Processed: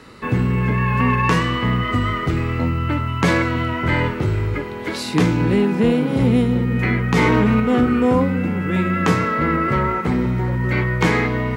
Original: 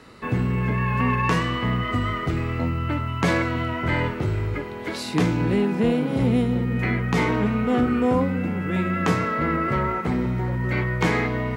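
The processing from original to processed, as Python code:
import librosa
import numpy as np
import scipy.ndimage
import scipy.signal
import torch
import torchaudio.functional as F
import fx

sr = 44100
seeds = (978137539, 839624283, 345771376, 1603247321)

y = fx.peak_eq(x, sr, hz=680.0, db=-4.5, octaves=0.28)
y = fx.env_flatten(y, sr, amount_pct=100, at=(7.16, 7.6))
y = F.gain(torch.from_numpy(y), 4.5).numpy()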